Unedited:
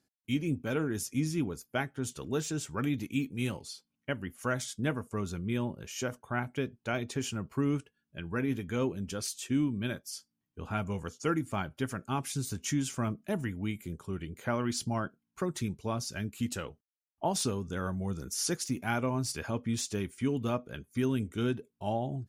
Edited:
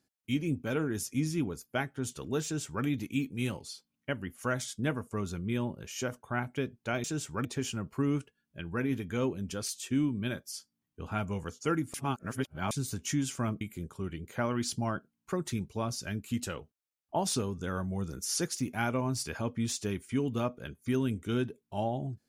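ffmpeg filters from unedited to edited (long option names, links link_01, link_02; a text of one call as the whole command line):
ffmpeg -i in.wav -filter_complex "[0:a]asplit=6[link_01][link_02][link_03][link_04][link_05][link_06];[link_01]atrim=end=7.042[link_07];[link_02]atrim=start=2.438:end=2.852[link_08];[link_03]atrim=start=7.038:end=11.532[link_09];[link_04]atrim=start=11.528:end=12.302,asetpts=PTS-STARTPTS,areverse[link_10];[link_05]atrim=start=12.298:end=13.202[link_11];[link_06]atrim=start=13.698[link_12];[link_07][link_08]acrossfade=duration=0.004:curve1=hsin:curve2=hsin[link_13];[link_13][link_09]acrossfade=duration=0.004:curve1=hsin:curve2=hsin[link_14];[link_14][link_10]acrossfade=duration=0.004:curve1=hsin:curve2=hsin[link_15];[link_15][link_11]acrossfade=duration=0.004:curve1=hsin:curve2=hsin[link_16];[link_16][link_12]acrossfade=duration=0.004:curve1=hsin:curve2=hsin" out.wav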